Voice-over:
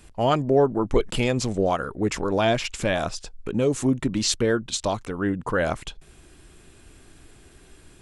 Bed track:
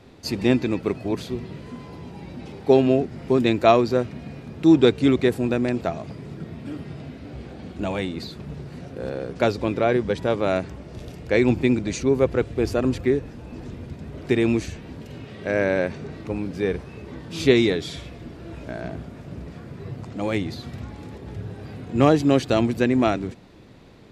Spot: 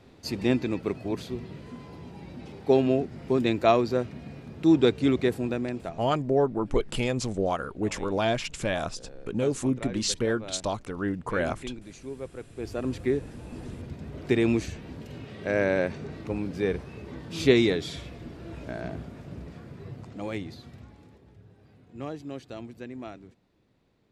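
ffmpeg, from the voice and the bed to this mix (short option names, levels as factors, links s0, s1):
-filter_complex "[0:a]adelay=5800,volume=0.596[s0];[1:a]volume=3.35,afade=t=out:st=5.31:d=0.97:silence=0.211349,afade=t=in:st=12.45:d=0.91:silence=0.16788,afade=t=out:st=18.98:d=2.37:silence=0.141254[s1];[s0][s1]amix=inputs=2:normalize=0"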